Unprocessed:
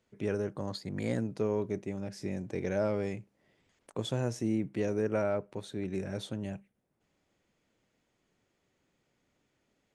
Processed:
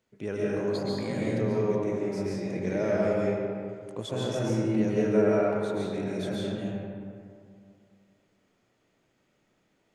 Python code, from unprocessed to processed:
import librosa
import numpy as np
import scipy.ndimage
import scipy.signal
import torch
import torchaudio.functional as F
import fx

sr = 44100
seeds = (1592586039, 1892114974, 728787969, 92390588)

y = fx.low_shelf(x, sr, hz=90.0, db=-5.0)
y = fx.rev_freeverb(y, sr, rt60_s=2.3, hf_ratio=0.5, predelay_ms=95, drr_db=-6.0)
y = y * librosa.db_to_amplitude(-1.0)